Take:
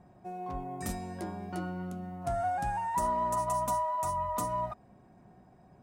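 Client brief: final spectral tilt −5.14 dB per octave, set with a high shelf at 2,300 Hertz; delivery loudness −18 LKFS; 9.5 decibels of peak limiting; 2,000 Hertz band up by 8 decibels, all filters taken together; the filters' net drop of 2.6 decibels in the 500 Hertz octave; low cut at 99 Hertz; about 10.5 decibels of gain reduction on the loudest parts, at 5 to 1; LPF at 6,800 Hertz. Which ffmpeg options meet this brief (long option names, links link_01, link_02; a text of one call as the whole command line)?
ffmpeg -i in.wav -af "highpass=99,lowpass=6800,equalizer=frequency=500:width_type=o:gain=-5.5,equalizer=frequency=2000:width_type=o:gain=7.5,highshelf=frequency=2300:gain=7,acompressor=threshold=-38dB:ratio=5,volume=25.5dB,alimiter=limit=-10.5dB:level=0:latency=1" out.wav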